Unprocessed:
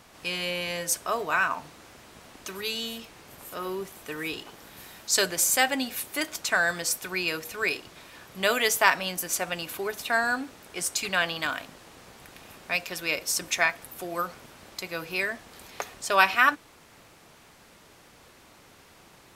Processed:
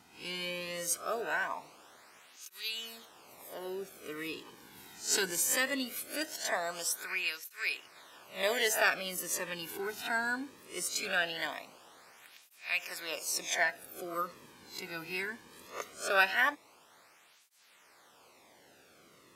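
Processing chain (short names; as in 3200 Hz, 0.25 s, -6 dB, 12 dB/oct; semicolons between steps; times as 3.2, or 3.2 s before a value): spectral swells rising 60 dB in 0.33 s; tape flanging out of phase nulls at 0.2 Hz, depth 1.8 ms; gain -5 dB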